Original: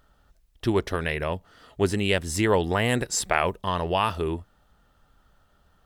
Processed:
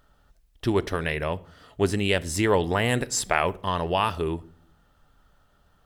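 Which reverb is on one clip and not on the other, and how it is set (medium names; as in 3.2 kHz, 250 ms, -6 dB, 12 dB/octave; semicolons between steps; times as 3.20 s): simulated room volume 870 m³, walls furnished, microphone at 0.32 m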